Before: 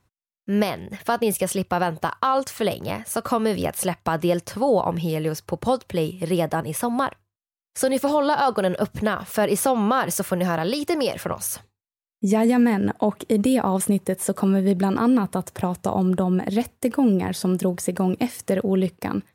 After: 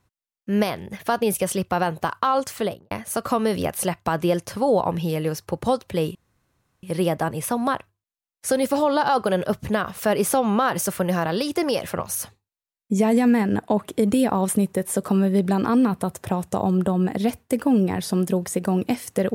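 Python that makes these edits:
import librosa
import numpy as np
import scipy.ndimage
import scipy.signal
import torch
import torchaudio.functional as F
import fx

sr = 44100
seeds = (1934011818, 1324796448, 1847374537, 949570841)

y = fx.studio_fade_out(x, sr, start_s=2.55, length_s=0.36)
y = fx.edit(y, sr, fx.insert_room_tone(at_s=6.15, length_s=0.68), tone=tone)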